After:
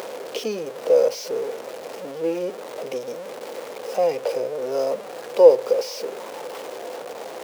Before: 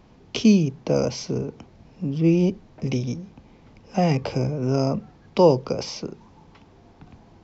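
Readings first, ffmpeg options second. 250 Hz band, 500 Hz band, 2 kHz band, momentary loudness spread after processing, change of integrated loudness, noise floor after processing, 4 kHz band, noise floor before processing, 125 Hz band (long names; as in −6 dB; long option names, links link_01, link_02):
−13.5 dB, +5.5 dB, 0.0 dB, 18 LU, +0.5 dB, −37 dBFS, −2.0 dB, −53 dBFS, −24.5 dB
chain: -af "aeval=exprs='val(0)+0.5*0.0668*sgn(val(0))':channel_layout=same,highpass=frequency=500:width_type=q:width=5.6,acompressor=mode=upward:threshold=-22dB:ratio=2.5,volume=-8.5dB"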